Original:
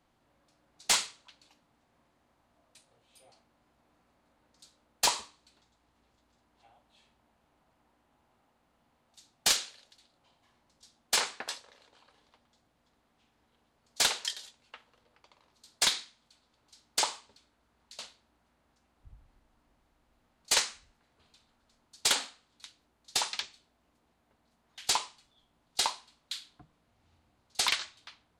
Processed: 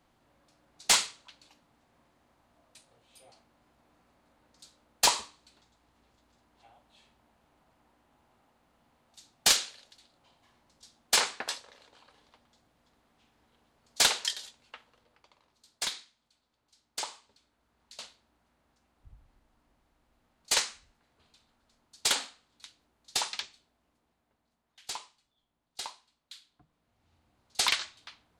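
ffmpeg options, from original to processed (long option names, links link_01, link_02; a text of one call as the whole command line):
ffmpeg -i in.wav -af "volume=22dB,afade=type=out:start_time=14.46:duration=1.45:silence=0.298538,afade=type=in:start_time=17.07:duration=0.87:silence=0.446684,afade=type=out:start_time=23.25:duration=1.58:silence=0.316228,afade=type=in:start_time=26.49:duration=1.15:silence=0.251189" out.wav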